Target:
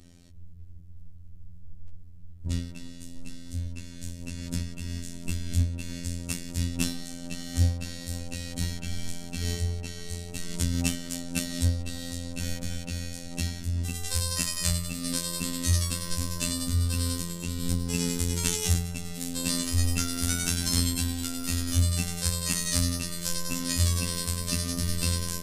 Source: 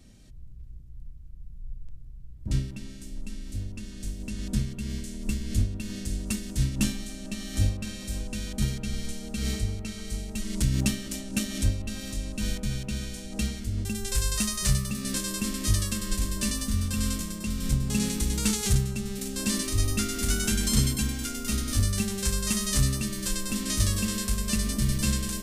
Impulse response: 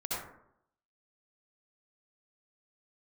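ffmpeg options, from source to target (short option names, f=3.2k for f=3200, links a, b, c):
-af "afftfilt=real='hypot(re,im)*cos(PI*b)':imag='0':win_size=2048:overlap=0.75,volume=4dB"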